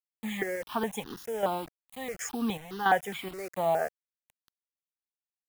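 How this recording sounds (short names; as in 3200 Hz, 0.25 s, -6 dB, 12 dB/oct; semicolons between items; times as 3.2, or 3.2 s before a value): chopped level 1.4 Hz, depth 60%, duty 60%; a quantiser's noise floor 8-bit, dither none; notches that jump at a steady rate 4.8 Hz 880–2300 Hz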